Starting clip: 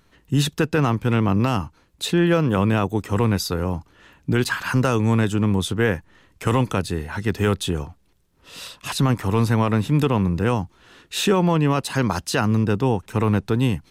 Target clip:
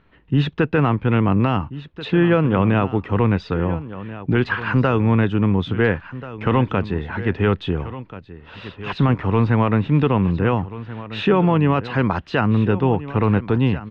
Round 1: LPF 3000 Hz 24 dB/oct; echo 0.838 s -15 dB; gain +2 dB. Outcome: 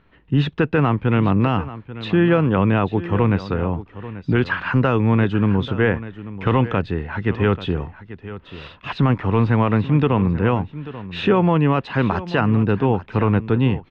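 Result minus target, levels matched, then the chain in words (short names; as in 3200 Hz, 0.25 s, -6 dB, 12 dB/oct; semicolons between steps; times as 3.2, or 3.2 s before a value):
echo 0.547 s early
LPF 3000 Hz 24 dB/oct; echo 1.385 s -15 dB; gain +2 dB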